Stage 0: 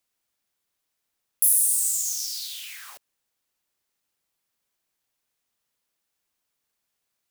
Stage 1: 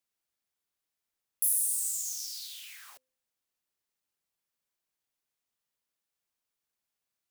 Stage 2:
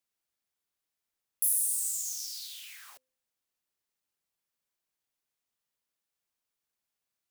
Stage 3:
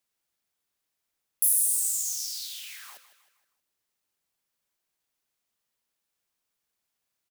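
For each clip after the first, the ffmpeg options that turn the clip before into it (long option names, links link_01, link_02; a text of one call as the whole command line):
ffmpeg -i in.wav -af "bandreject=frequency=258.1:width_type=h:width=4,bandreject=frequency=516.2:width_type=h:width=4,volume=-8dB" out.wav
ffmpeg -i in.wav -af anull out.wav
ffmpeg -i in.wav -af "aecho=1:1:157|314|471|628:0.2|0.0938|0.0441|0.0207,volume=4.5dB" out.wav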